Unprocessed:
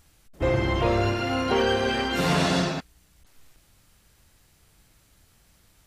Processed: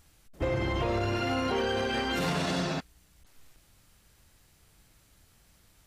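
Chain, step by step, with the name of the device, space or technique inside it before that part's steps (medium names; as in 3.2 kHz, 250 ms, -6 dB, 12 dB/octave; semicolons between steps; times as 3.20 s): limiter into clipper (peak limiter -18.5 dBFS, peak gain reduction 8 dB; hard clipper -20 dBFS, distortion -29 dB); trim -2 dB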